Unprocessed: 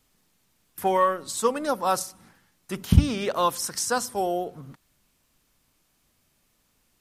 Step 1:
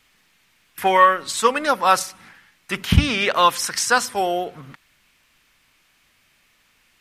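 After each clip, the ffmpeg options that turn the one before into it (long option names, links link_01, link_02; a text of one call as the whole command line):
ffmpeg -i in.wav -af "equalizer=frequency=2200:width_type=o:width=2.1:gain=15,volume=1dB" out.wav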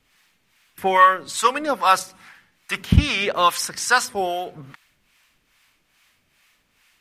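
ffmpeg -i in.wav -filter_complex "[0:a]acrossover=split=680[link_01][link_02];[link_01]aeval=exprs='val(0)*(1-0.7/2+0.7/2*cos(2*PI*2.4*n/s))':channel_layout=same[link_03];[link_02]aeval=exprs='val(0)*(1-0.7/2-0.7/2*cos(2*PI*2.4*n/s))':channel_layout=same[link_04];[link_03][link_04]amix=inputs=2:normalize=0,volume=1.5dB" out.wav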